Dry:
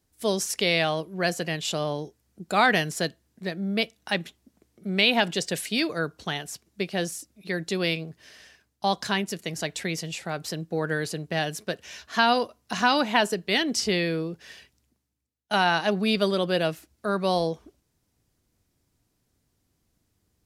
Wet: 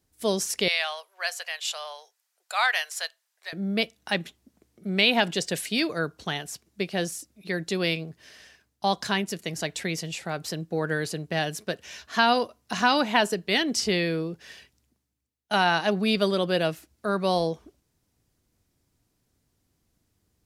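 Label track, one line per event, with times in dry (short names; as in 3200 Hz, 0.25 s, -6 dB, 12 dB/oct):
0.680000	3.530000	Bessel high-pass 1100 Hz, order 8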